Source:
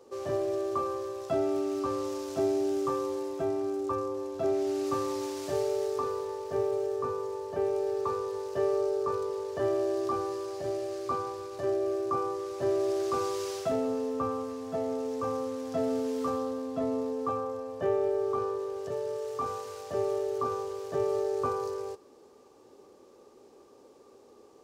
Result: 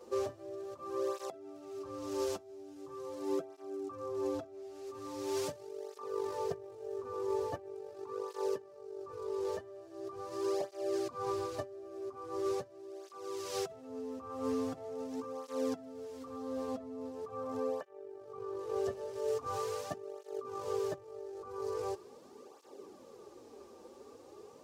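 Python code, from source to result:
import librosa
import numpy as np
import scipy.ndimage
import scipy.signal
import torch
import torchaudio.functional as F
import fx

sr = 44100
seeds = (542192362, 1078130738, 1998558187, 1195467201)

y = fx.over_compress(x, sr, threshold_db=-36.0, ratio=-0.5)
y = fx.flanger_cancel(y, sr, hz=0.42, depth_ms=7.4)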